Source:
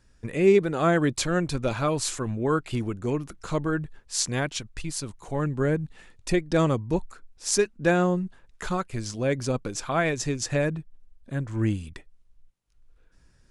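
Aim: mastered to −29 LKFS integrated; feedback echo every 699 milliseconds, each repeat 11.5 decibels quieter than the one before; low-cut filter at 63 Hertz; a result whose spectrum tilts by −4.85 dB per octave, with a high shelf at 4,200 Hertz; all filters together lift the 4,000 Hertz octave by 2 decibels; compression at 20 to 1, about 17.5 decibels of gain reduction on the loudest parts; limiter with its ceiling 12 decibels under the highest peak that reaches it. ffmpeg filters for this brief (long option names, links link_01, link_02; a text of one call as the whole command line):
ffmpeg -i in.wav -af "highpass=63,equalizer=frequency=4000:width_type=o:gain=6,highshelf=frequency=4200:gain=-5.5,acompressor=threshold=-31dB:ratio=20,alimiter=level_in=4dB:limit=-24dB:level=0:latency=1,volume=-4dB,aecho=1:1:699|1398|2097:0.266|0.0718|0.0194,volume=9dB" out.wav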